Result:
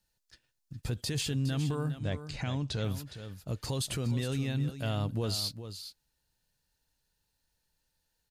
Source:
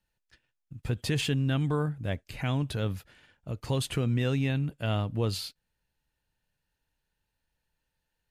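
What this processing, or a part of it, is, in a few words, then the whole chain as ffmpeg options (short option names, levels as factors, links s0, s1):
over-bright horn tweeter: -filter_complex "[0:a]highshelf=f=3500:t=q:w=1.5:g=6.5,alimiter=limit=0.0631:level=0:latency=1:release=45,asettb=1/sr,asplit=3[s0][s1][s2];[s0]atrim=end=1.994[s3];[s1]atrim=start=1.99:end=2.84,asetpts=PTS-STARTPTS,afade=t=in:d=0.004:c=qsin,afade=t=out:st=0.846:d=0.004:c=qsin,lowpass=f=7300:w=0.5412,lowpass=f=7300:w=1.3066[s4];[s2]atrim=start=2.836[s5];[s3][s4]acrossfade=d=0.004:c1=hsin:c2=qsin[s6];[s6][s5]acrossfade=d=0.004:c1=qsin:c2=hsin,aecho=1:1:412:0.282"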